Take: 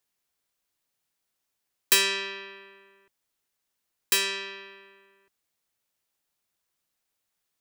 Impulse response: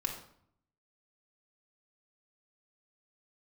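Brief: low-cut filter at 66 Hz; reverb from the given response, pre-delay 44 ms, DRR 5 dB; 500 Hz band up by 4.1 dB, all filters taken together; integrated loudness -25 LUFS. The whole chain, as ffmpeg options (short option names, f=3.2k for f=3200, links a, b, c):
-filter_complex "[0:a]highpass=66,equalizer=f=500:t=o:g=6,asplit=2[a][b];[1:a]atrim=start_sample=2205,adelay=44[c];[b][c]afir=irnorm=-1:irlink=0,volume=-8dB[d];[a][d]amix=inputs=2:normalize=0,volume=-0.5dB"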